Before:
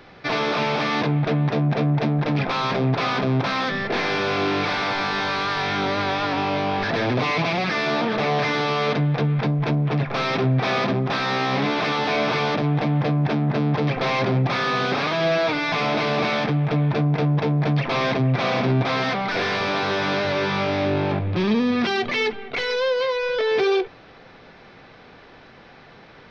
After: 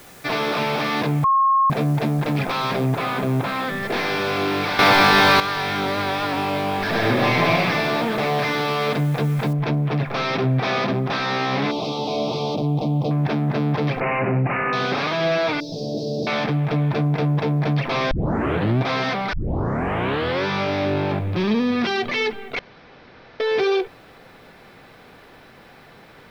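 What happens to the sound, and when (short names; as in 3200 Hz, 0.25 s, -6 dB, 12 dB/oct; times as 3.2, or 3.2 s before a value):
1.24–1.7 bleep 1080 Hz -13.5 dBFS
2.86–3.83 air absorption 200 m
4.79–5.4 gain +10 dB
6.78–7.57 reverb throw, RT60 2.3 s, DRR -1.5 dB
9.53 noise floor step -48 dB -66 dB
11.71–13.11 Butterworth band-stop 1700 Hz, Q 0.68
14–14.73 careless resampling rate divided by 8×, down none, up filtered
15.6–16.27 elliptic band-stop 540–4700 Hz, stop band 60 dB
18.11 tape start 0.68 s
19.33 tape start 1.12 s
22.59–23.4 room tone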